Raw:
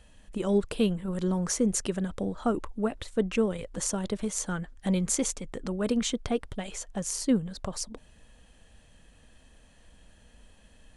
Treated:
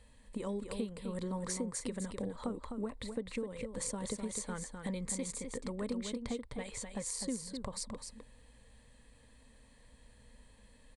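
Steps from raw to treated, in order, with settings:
EQ curve with evenly spaced ripples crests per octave 0.97, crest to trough 9 dB
downward compressor 12 to 1, threshold −29 dBFS, peak gain reduction 14.5 dB
single-tap delay 255 ms −6.5 dB
level −5.5 dB

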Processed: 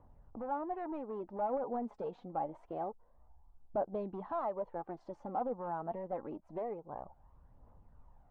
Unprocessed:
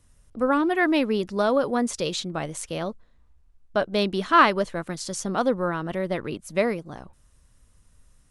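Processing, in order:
low-shelf EQ 150 Hz −6 dB
downward compressor 2 to 1, threshold −48 dBFS, peak gain reduction 19.5 dB
gain into a clipping stage and back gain 35.5 dB
phase shifter 0.26 Hz, delay 4.8 ms, feedback 44%
low-pass with resonance 830 Hz, resonance Q 4.9
level −2 dB

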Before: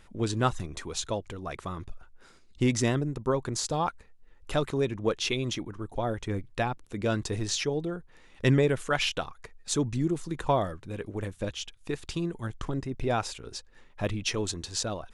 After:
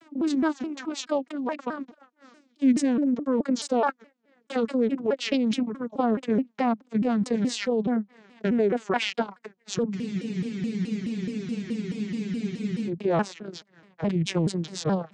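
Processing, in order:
vocoder with a gliding carrier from D4, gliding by −9 semitones
in parallel at +3 dB: compressor whose output falls as the input rises −31 dBFS, ratio −0.5
on the sum: frozen spectrum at 0:09.96, 2.92 s
pitch modulation by a square or saw wave saw down 4.7 Hz, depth 250 cents

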